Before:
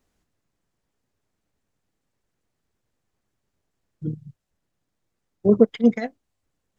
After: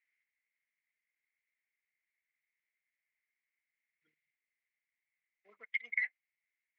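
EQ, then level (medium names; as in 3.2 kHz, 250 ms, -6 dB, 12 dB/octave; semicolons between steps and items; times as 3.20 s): ladder band-pass 2.2 kHz, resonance 85%; peaking EQ 1.9 kHz +10.5 dB 1.4 oct; -7.5 dB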